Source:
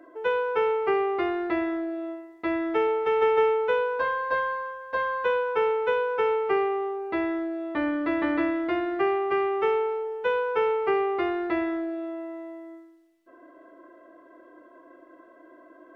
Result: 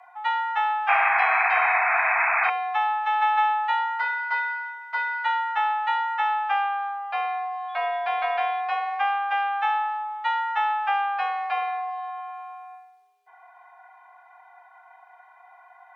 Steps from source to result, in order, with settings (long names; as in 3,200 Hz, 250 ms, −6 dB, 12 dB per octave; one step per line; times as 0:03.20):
0:00.88–0:02.50: sound drawn into the spectrogram noise 230–2,200 Hz −22 dBFS
0:07.68–0:08.59: steady tone 3,000 Hz −50 dBFS
frequency shifter +410 Hz